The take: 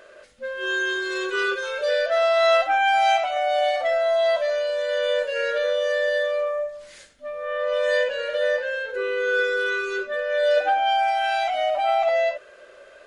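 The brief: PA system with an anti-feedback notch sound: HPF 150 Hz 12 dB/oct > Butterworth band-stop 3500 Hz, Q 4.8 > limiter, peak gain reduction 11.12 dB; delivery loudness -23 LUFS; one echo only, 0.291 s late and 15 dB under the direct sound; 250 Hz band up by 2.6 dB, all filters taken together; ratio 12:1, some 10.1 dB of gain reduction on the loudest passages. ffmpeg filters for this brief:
-af "equalizer=f=250:t=o:g=6.5,acompressor=threshold=-24dB:ratio=12,highpass=150,asuperstop=centerf=3500:order=8:qfactor=4.8,aecho=1:1:291:0.178,volume=12dB,alimiter=limit=-16.5dB:level=0:latency=1"

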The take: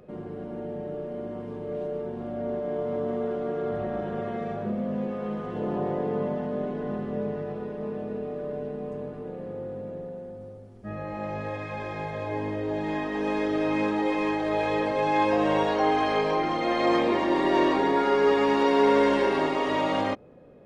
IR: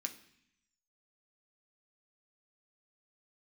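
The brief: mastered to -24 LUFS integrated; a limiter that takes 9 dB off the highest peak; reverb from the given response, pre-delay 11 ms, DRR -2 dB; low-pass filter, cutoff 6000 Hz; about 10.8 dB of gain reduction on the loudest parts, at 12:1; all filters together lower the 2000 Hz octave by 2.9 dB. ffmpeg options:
-filter_complex "[0:a]lowpass=6k,equalizer=f=2k:t=o:g=-3.5,acompressor=threshold=-28dB:ratio=12,alimiter=level_in=5dB:limit=-24dB:level=0:latency=1,volume=-5dB,asplit=2[a][b];[1:a]atrim=start_sample=2205,adelay=11[c];[b][c]afir=irnorm=-1:irlink=0,volume=3.5dB[d];[a][d]amix=inputs=2:normalize=0,volume=11dB"

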